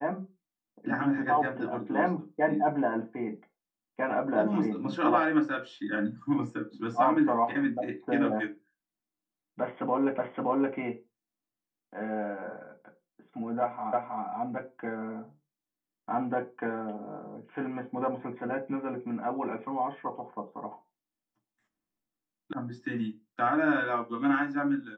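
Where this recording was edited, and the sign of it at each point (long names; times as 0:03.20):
0:10.18: the same again, the last 0.57 s
0:13.93: the same again, the last 0.32 s
0:22.53: cut off before it has died away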